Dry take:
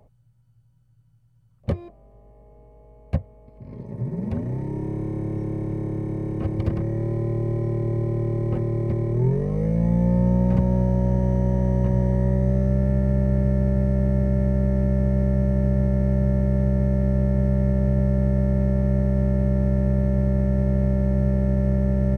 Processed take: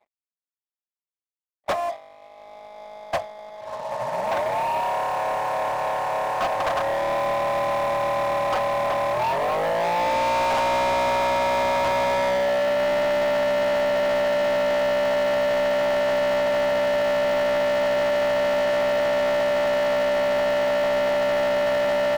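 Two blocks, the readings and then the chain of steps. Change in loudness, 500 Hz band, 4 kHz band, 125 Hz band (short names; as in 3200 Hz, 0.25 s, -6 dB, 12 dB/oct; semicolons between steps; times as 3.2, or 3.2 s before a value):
0.0 dB, +9.0 dB, n/a, -22.5 dB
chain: elliptic band-pass 650–1700 Hz, stop band 40 dB; sample leveller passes 5; expander -35 dBFS; gain +9 dB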